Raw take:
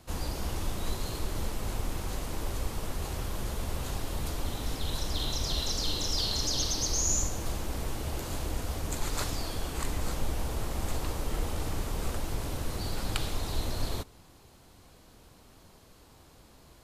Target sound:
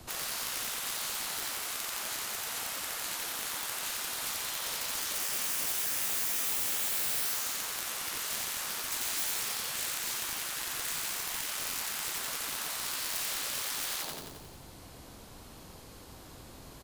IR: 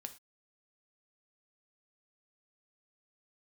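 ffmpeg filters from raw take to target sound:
-filter_complex "[0:a]acrossover=split=100|1700|1900[s0][s1][s2][s3];[s0]acompressor=threshold=0.00891:ratio=10[s4];[s4][s1][s2][s3]amix=inputs=4:normalize=0,lowshelf=f=66:g=3,aeval=exprs='(mod(25.1*val(0)+1,2)-1)/25.1':c=same,aecho=1:1:89|178|267|356|445|534|623|712:0.473|0.279|0.165|0.0972|0.0573|0.0338|0.02|0.0118,afftfilt=real='re*lt(hypot(re,im),0.0224)':imag='im*lt(hypot(re,im),0.0224)':win_size=1024:overlap=0.75,asoftclip=type=hard:threshold=0.0178,highshelf=f=8600:g=3.5,volume=1.78"

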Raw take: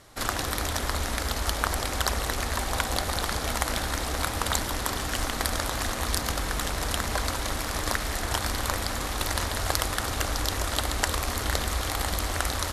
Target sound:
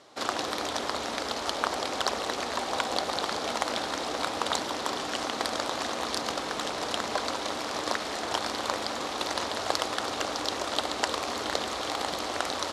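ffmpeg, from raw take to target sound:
-af "highpass=300,lowpass=4800,equalizer=f=1800:w=1.2:g=-7,volume=1.41"

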